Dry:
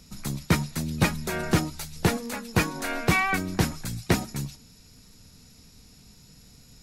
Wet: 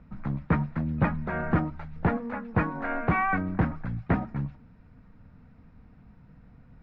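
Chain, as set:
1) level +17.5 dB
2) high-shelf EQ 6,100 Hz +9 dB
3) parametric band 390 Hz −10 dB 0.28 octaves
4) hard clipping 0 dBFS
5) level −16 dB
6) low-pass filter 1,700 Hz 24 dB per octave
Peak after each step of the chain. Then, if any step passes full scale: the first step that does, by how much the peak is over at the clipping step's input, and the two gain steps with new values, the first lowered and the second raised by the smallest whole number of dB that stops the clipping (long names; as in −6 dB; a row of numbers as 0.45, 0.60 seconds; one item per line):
+7.5, +8.5, +8.5, 0.0, −16.0, −14.5 dBFS
step 1, 8.5 dB
step 1 +8.5 dB, step 5 −7 dB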